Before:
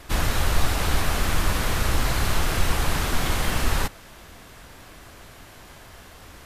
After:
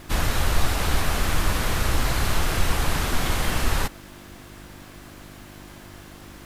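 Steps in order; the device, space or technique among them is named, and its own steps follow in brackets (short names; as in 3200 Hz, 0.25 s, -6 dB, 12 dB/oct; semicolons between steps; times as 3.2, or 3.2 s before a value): video cassette with head-switching buzz (buzz 50 Hz, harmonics 7, -47 dBFS 0 dB/oct; white noise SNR 39 dB)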